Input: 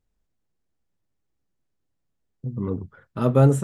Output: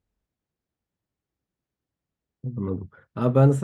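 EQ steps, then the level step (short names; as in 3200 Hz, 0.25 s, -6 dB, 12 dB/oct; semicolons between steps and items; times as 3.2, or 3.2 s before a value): HPF 41 Hz; high shelf 6900 Hz -10.5 dB; -1.0 dB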